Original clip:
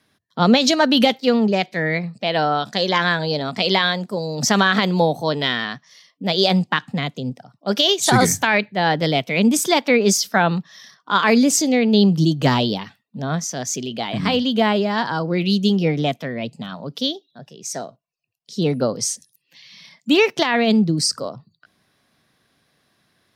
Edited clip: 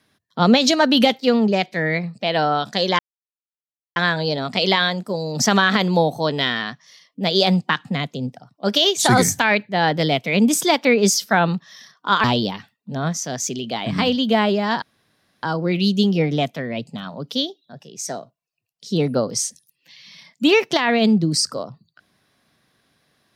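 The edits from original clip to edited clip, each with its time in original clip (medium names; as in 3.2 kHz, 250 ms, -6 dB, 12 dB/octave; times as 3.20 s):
2.99 s: insert silence 0.97 s
11.27–12.51 s: delete
15.09 s: insert room tone 0.61 s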